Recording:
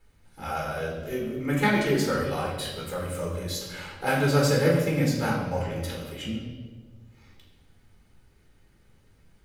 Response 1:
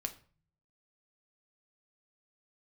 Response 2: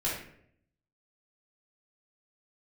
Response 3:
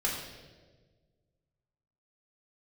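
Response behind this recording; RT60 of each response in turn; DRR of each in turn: 3; 0.40, 0.65, 1.4 s; 5.5, -8.0, -3.5 dB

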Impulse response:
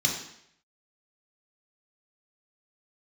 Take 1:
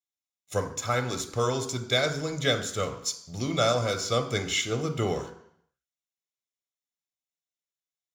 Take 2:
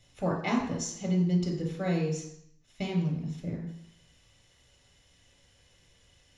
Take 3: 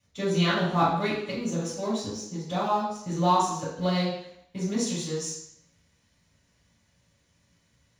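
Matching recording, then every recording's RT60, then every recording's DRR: 2; 0.70, 0.70, 0.70 s; 6.5, -1.0, -11.0 dB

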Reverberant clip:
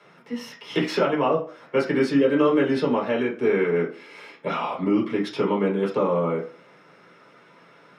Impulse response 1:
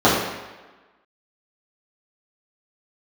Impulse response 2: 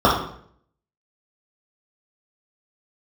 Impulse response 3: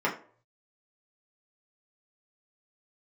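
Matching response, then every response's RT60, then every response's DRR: 3; 1.2 s, 0.60 s, not exponential; -10.5, -5.5, -5.0 dB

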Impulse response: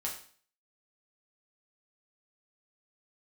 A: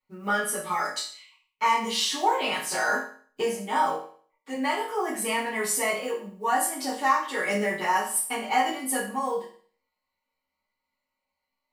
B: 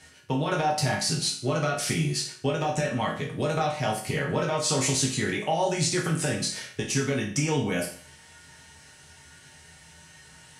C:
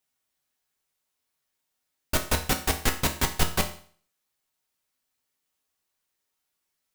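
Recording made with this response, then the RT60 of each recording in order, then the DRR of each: B; 0.45, 0.45, 0.45 s; -13.0, -3.5, 3.5 dB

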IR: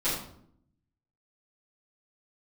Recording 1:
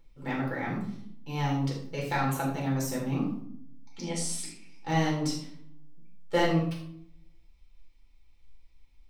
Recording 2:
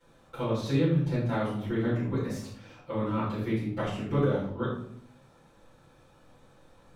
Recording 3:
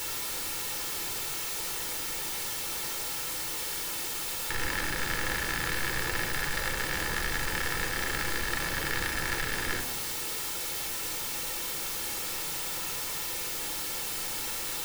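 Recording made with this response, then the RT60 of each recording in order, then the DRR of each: 2; 0.65, 0.65, 0.65 s; -4.0, -13.5, 5.0 dB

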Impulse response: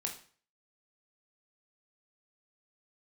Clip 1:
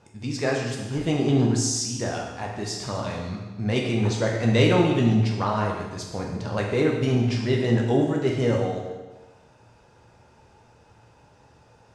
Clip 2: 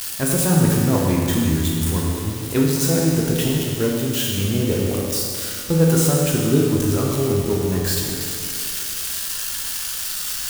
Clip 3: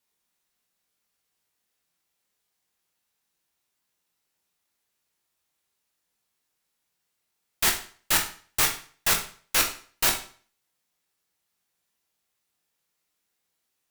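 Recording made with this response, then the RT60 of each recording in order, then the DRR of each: 3; 1.2, 2.3, 0.45 s; -1.0, -3.0, 1.5 dB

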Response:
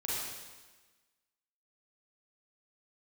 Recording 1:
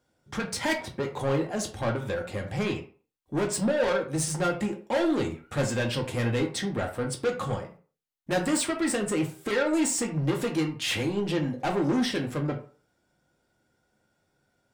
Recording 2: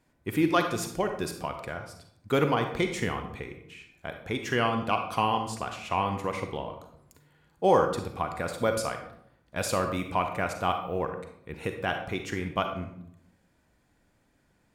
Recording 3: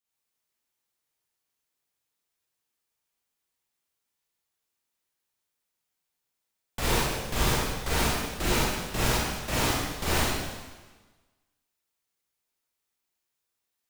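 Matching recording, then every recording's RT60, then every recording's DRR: 3; 0.40, 0.70, 1.3 s; 1.5, 6.0, -7.5 dB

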